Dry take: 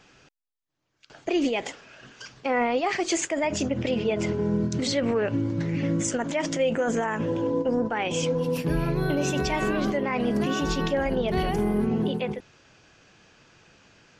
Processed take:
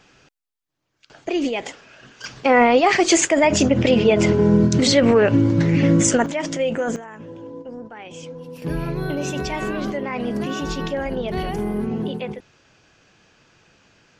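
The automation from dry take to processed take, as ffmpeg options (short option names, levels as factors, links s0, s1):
-af "asetnsamples=n=441:p=0,asendcmd='2.24 volume volume 10dB;6.26 volume volume 2dB;6.96 volume volume -10.5dB;8.62 volume volume 0dB',volume=1.26"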